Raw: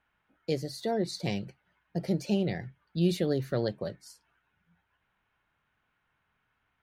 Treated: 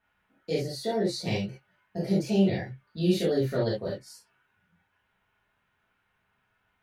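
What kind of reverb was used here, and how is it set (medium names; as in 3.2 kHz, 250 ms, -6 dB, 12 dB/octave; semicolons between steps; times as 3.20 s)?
gated-style reverb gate 90 ms flat, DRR -7 dB; trim -4.5 dB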